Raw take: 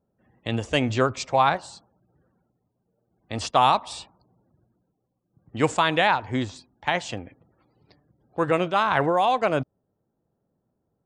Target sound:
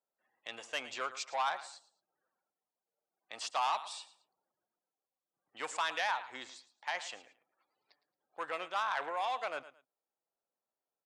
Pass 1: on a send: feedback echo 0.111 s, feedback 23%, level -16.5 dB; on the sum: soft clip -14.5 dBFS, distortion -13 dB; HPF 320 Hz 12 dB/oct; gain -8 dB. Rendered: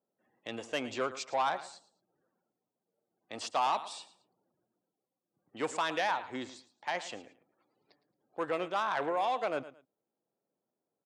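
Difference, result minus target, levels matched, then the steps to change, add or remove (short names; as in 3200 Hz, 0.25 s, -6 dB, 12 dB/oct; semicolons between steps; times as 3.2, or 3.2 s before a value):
250 Hz band +12.0 dB
change: HPF 880 Hz 12 dB/oct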